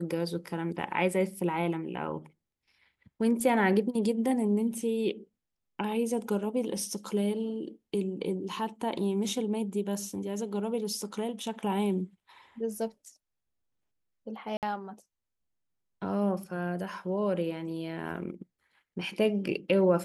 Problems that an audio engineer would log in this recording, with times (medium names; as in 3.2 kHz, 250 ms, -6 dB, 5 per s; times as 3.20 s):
14.57–14.63 s: dropout 58 ms